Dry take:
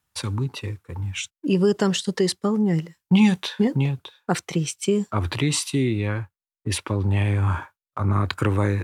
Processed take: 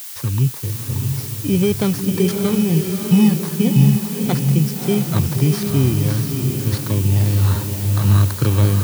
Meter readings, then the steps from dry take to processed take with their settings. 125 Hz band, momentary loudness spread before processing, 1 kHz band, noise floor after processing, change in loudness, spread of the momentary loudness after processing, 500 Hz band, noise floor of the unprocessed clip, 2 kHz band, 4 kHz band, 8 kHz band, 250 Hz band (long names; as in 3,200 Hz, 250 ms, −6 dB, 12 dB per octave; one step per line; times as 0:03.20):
+8.5 dB, 11 LU, −0.5 dB, −29 dBFS, +6.0 dB, 7 LU, +2.0 dB, below −85 dBFS, −1.5 dB, +0.5 dB, +4.0 dB, +5.0 dB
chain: samples in bit-reversed order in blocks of 16 samples
low-pass filter 7,100 Hz
parametric band 130 Hz +10.5 dB 0.84 octaves
background noise blue −33 dBFS
on a send: feedback delay with all-pass diffusion 627 ms, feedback 45%, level −4 dB